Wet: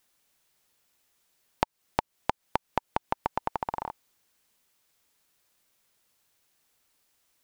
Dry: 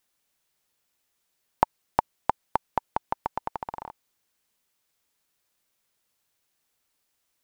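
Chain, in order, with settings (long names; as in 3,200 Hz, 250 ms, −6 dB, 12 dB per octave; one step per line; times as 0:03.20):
downward compressor 6 to 1, threshold −28 dBFS, peak gain reduction 13.5 dB
level +4.5 dB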